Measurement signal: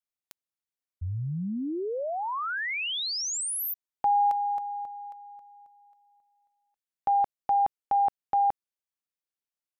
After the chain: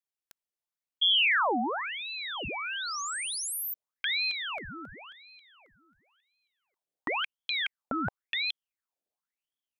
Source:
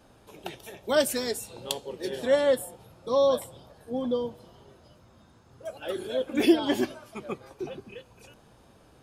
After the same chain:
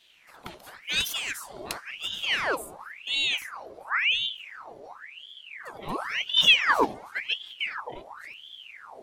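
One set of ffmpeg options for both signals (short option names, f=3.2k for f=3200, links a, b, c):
-af "asubboost=boost=10:cutoff=210,asoftclip=type=tanh:threshold=-8dB,aeval=exprs='val(0)*sin(2*PI*1900*n/s+1900*0.75/0.94*sin(2*PI*0.94*n/s))':c=same"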